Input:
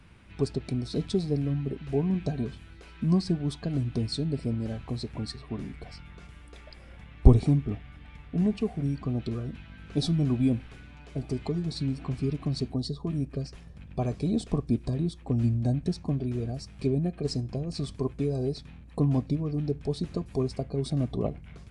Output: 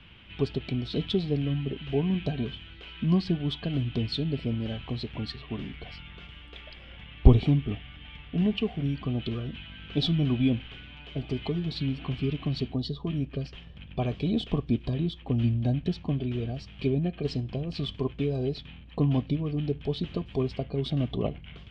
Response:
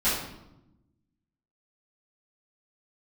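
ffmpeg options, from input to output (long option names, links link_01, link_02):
-af "lowpass=frequency=3100:width_type=q:width=6.7"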